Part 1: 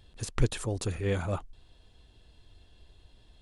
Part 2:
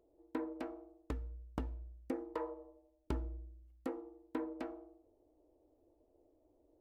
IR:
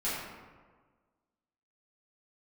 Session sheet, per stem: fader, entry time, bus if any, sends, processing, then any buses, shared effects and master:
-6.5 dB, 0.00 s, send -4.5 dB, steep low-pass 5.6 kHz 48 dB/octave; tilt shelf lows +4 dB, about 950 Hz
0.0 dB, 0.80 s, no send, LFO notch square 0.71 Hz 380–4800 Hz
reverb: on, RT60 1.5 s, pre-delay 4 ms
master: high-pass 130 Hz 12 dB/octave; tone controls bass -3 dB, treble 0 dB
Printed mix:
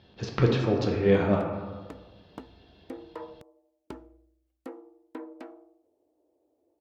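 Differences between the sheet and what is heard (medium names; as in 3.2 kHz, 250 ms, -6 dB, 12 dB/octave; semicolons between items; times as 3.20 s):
stem 1 -6.5 dB -> +2.5 dB; stem 2: missing LFO notch square 0.71 Hz 380–4800 Hz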